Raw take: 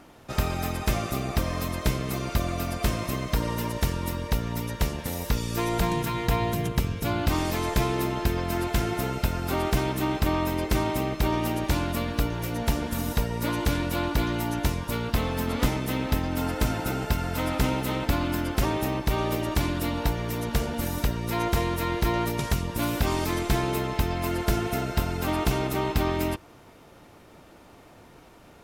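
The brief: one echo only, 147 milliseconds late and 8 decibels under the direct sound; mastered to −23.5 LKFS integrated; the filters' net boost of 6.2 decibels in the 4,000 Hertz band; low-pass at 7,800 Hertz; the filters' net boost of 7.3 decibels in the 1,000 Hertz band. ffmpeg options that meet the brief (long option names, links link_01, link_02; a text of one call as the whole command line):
ffmpeg -i in.wav -af "lowpass=7800,equalizer=frequency=1000:width_type=o:gain=8.5,equalizer=frequency=4000:width_type=o:gain=7.5,aecho=1:1:147:0.398,volume=0.5dB" out.wav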